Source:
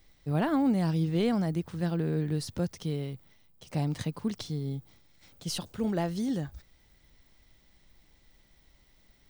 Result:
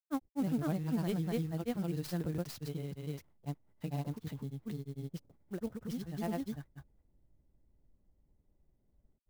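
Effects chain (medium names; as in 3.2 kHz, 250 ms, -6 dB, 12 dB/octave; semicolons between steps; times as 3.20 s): level-controlled noise filter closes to 440 Hz, open at -28 dBFS; granulator, grains 20 per s, spray 443 ms; sampling jitter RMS 0.03 ms; trim -5.5 dB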